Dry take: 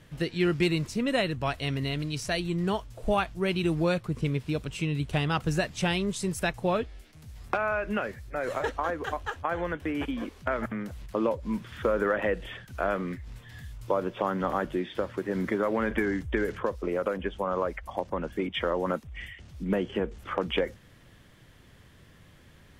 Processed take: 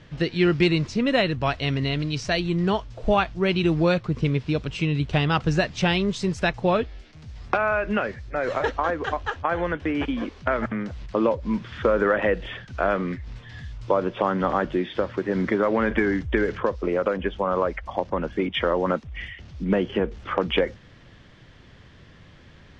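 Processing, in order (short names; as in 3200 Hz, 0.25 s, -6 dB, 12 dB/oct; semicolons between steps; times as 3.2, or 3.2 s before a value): LPF 5800 Hz 24 dB/oct; gain +5.5 dB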